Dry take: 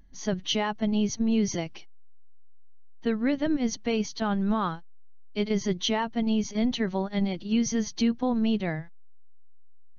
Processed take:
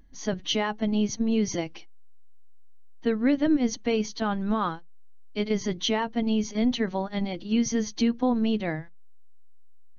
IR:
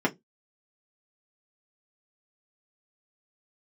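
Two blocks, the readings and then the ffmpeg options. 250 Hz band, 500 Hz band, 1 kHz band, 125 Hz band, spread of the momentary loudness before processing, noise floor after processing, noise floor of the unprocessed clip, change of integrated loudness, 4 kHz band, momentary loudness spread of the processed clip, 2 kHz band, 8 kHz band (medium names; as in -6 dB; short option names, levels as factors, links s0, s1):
+0.5 dB, +1.5 dB, +1.0 dB, -1.5 dB, 7 LU, -42 dBFS, -42 dBFS, +1.0 dB, +0.5 dB, 8 LU, +1.0 dB, no reading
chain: -filter_complex "[0:a]asplit=2[s0][s1];[1:a]atrim=start_sample=2205,asetrate=52920,aresample=44100[s2];[s1][s2]afir=irnorm=-1:irlink=0,volume=0.0708[s3];[s0][s3]amix=inputs=2:normalize=0"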